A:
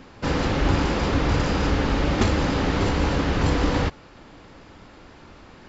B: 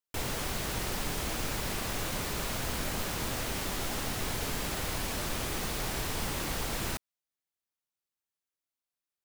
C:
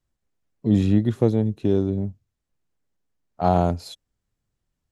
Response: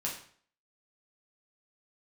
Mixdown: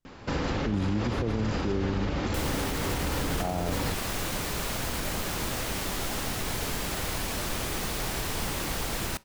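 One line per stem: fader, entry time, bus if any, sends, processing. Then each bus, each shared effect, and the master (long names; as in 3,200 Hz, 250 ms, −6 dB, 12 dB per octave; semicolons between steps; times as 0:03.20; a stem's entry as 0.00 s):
0.0 dB, 0.05 s, no send, downward compressor 3 to 1, threshold −27 dBFS, peak gain reduction 9 dB
+2.0 dB, 2.20 s, send −22.5 dB, no processing
−3.5 dB, 0.00 s, no send, no processing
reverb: on, RT60 0.50 s, pre-delay 6 ms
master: brickwall limiter −19.5 dBFS, peak gain reduction 12 dB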